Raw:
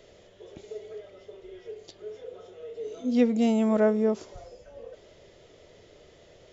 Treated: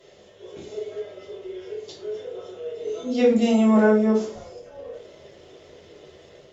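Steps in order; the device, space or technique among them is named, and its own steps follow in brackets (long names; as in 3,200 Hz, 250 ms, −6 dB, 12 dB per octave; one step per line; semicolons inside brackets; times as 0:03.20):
far-field microphone of a smart speaker (convolution reverb RT60 0.45 s, pre-delay 3 ms, DRR −7 dB; high-pass filter 140 Hz 6 dB per octave; automatic gain control gain up to 4 dB; level −4 dB; Opus 48 kbit/s 48,000 Hz)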